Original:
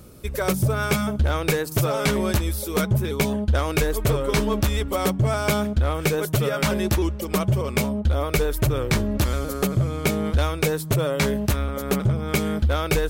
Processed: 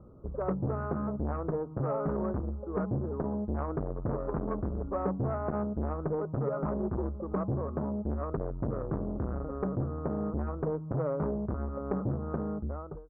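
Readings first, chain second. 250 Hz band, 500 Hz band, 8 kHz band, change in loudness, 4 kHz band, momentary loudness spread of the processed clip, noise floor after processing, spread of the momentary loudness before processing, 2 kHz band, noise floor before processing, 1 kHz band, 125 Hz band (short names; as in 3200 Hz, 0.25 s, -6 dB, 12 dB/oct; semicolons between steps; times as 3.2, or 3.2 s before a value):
-8.0 dB, -9.0 dB, under -40 dB, -10.5 dB, under -40 dB, 3 LU, -41 dBFS, 3 LU, -23.5 dB, -32 dBFS, -9.5 dB, -11.5 dB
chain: ending faded out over 0.73 s; steep low-pass 1300 Hz 72 dB/oct; core saturation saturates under 350 Hz; gain -6.5 dB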